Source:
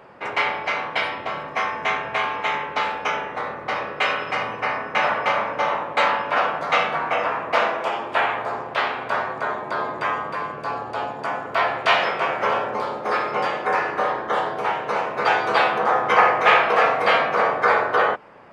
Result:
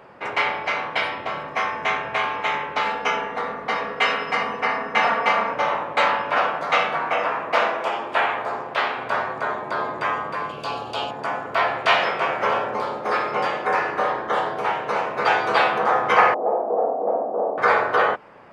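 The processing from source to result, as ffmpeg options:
ffmpeg -i in.wav -filter_complex "[0:a]asettb=1/sr,asplit=3[link_01][link_02][link_03];[link_01]atrim=end=2.854[link_04];[link_02]atrim=start=2.85:end=5.54,asetpts=PTS-STARTPTS,afade=type=in:duration=0.004:curve=qsin,afade=type=out:start_time=2.686:duration=0.004:curve=qsin,aecho=1:1:4.3:0.65,atrim=end_sample=118629[link_05];[link_03]atrim=start=5.536[link_06];[link_04][link_05]acrossfade=duration=0.004:curve1=hsin:curve2=qsin[link_07];[link_07][link_06]acrossfade=duration=0.004:curve1=qsin:curve2=hsin,asettb=1/sr,asplit=3[link_08][link_09][link_10];[link_08]atrim=end=6.474[link_11];[link_09]atrim=start=6.47:end=8.98,asetpts=PTS-STARTPTS,afade=type=in:duration=0.004:curve=qsin,afade=type=out:start_time=2.506:duration=0.004:curve=qsin,equalizer=frequency=78:width=0.92:gain=-7[link_12];[link_10]atrim=start=8.976[link_13];[link_11][link_12]acrossfade=duration=0.004:curve1=hsin:curve2=qsin[link_14];[link_14][link_13]acrossfade=duration=0.004:curve1=qsin:curve2=hsin,asettb=1/sr,asplit=3[link_15][link_16][link_17];[link_15]atrim=end=10.494[link_18];[link_16]atrim=start=10.49:end=11.11,asetpts=PTS-STARTPTS,afade=type=in:duration=0.004:curve=qsin,afade=type=out:start_time=0.616:duration=0.004:curve=qsin,highshelf=frequency=2400:width_type=q:width=3:gain=7[link_19];[link_17]atrim=start=11.106[link_20];[link_18][link_19]acrossfade=duration=0.004:curve1=hsin:curve2=qsin[link_21];[link_21][link_20]acrossfade=duration=0.004:curve1=qsin:curve2=hsin,asettb=1/sr,asplit=3[link_22][link_23][link_24];[link_22]atrim=end=16.344[link_25];[link_23]atrim=start=16.34:end=17.58,asetpts=PTS-STARTPTS,afade=type=in:duration=0.004:curve=qsin,afade=type=out:start_time=1.236:duration=0.004:curve=qsin,asuperpass=centerf=410:order=8:qfactor=0.72[link_26];[link_24]atrim=start=17.576[link_27];[link_25][link_26]acrossfade=duration=0.004:curve1=hsin:curve2=qsin[link_28];[link_28][link_27]acrossfade=duration=0.004:curve1=qsin:curve2=hsin" out.wav

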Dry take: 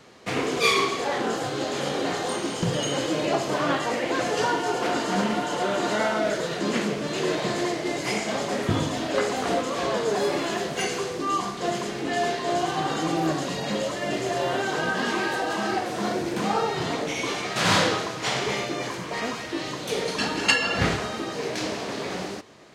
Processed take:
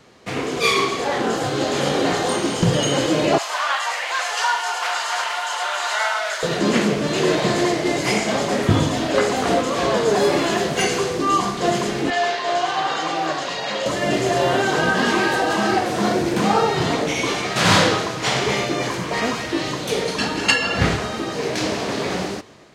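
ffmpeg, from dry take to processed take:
ffmpeg -i in.wav -filter_complex "[0:a]asettb=1/sr,asplit=3[link_01][link_02][link_03];[link_01]atrim=end=3.384[link_04];[link_02]atrim=start=3.38:end=6.43,asetpts=PTS-STARTPTS,afade=type=in:duration=0.004:curve=qsin,afade=type=out:start_time=3.046:duration=0.004:curve=qsin,highpass=frequency=850:width=0.5412,highpass=frequency=850:width=1.3066[link_05];[link_03]atrim=start=6.426[link_06];[link_04][link_05]acrossfade=duration=0.004:curve1=hsin:curve2=qsin[link_07];[link_07][link_06]acrossfade=duration=0.004:curve1=qsin:curve2=hsin,asettb=1/sr,asplit=3[link_08][link_09][link_10];[link_08]atrim=end=12.104[link_11];[link_09]atrim=start=12.1:end=13.86,asetpts=PTS-STARTPTS,afade=type=in:duration=0.004:curve=qsin,afade=type=out:start_time=1.756:duration=0.004:curve=qsin,acrossover=split=530 6400:gain=0.141 1 0.158[link_12][link_13][link_14];[link_12][link_13][link_14]amix=inputs=3:normalize=0[link_15];[link_10]atrim=start=13.856[link_16];[link_11][link_15]acrossfade=duration=0.004:curve1=hsin:curve2=qsin[link_17];[link_17][link_16]acrossfade=duration=0.004:curve1=qsin:curve2=hsin,lowshelf=frequency=120:gain=5.5,dynaudnorm=framelen=260:gausssize=5:maxgain=7dB" out.wav

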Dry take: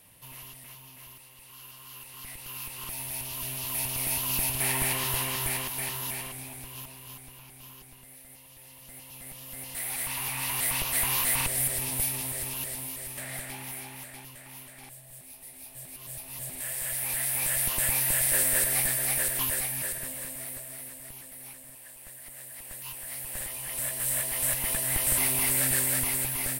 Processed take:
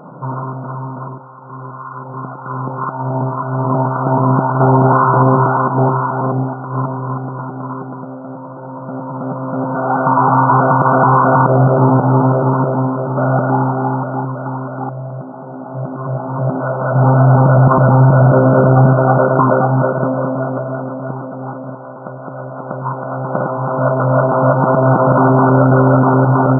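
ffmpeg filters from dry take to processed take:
ffmpeg -i in.wav -filter_complex "[0:a]asettb=1/sr,asplit=3[link_01][link_02][link_03];[link_01]atrim=end=1.084[link_04];[link_02]atrim=start=1.08:end=6.74,asetpts=PTS-STARTPTS,afade=type=in:duration=0.004:curve=qsin,afade=type=out:start_time=5.656:duration=0.004:curve=qsin,acrossover=split=940[link_05][link_06];[link_05]aeval=exprs='val(0)*(1-0.7/2+0.7/2*cos(2*PI*1.9*n/s))':channel_layout=same[link_07];[link_06]aeval=exprs='val(0)*(1-0.7/2-0.7/2*cos(2*PI*1.9*n/s))':channel_layout=same[link_08];[link_07][link_08]amix=inputs=2:normalize=0[link_09];[link_03]atrim=start=6.736[link_10];[link_04][link_09]acrossfade=duration=0.004:curve1=hsin:curve2=qsin[link_11];[link_11][link_10]acrossfade=duration=0.004:curve1=qsin:curve2=hsin,asettb=1/sr,asplit=3[link_12][link_13][link_14];[link_12]atrim=end=7.394[link_15];[link_13]atrim=start=7.39:end=10.41,asetpts=PTS-STARTPTS,afade=type=in:duration=0.004:curve=qsin,afade=type=out:start_time=3.016:duration=0.004:curve=qsin,asplit=2[link_16][link_17];[link_17]adelay=12,volume=-8dB[link_18];[link_16][link_18]amix=inputs=2:normalize=0,atrim=end_sample=133182[link_19];[link_14]atrim=start=10.406[link_20];[link_15][link_19]acrossfade=duration=0.004:curve1=hsin:curve2=qsin[link_21];[link_21][link_20]acrossfade=duration=0.004:curve1=qsin:curve2=hsin,asettb=1/sr,asplit=3[link_22][link_23][link_24];[link_22]atrim=end=16.954[link_25];[link_23]atrim=start=16.95:end=18.93,asetpts=PTS-STARTPTS,afade=type=in:duration=0.004:curve=qsin,afade=type=out:start_time=1.976:duration=0.004:curve=qsin,lowshelf=frequency=300:gain=11[link_26];[link_24]atrim=start=18.926[link_27];[link_25][link_26]acrossfade=duration=0.004:curve1=hsin:curve2=qsin[link_28];[link_28][link_27]acrossfade=duration=0.004:curve1=qsin:curve2=hsin,afftfilt=real='re*between(b*sr/4096,120,1500)':imag='im*between(b*sr/4096,120,1500)':win_size=4096:overlap=0.75,alimiter=level_in=31.5dB:limit=-1dB:release=50:level=0:latency=1,volume=-1dB" out.wav

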